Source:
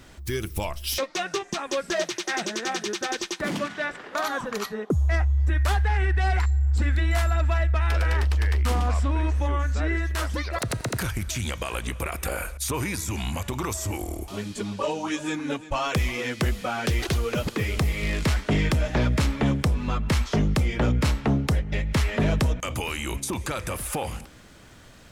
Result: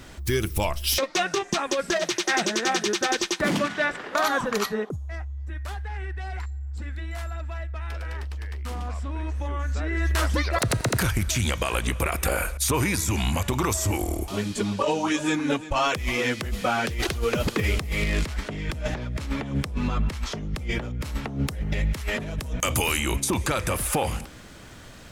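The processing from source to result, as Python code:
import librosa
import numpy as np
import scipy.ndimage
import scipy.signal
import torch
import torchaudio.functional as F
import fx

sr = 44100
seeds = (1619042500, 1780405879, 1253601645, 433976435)

y = fx.high_shelf(x, sr, hz=fx.line((20.7, 12000.0), (22.98, 6500.0)), db=11.0, at=(20.7, 22.98), fade=0.02)
y = fx.over_compress(y, sr, threshold_db=-26.0, ratio=-0.5)
y = y * librosa.db_to_amplitude(1.5)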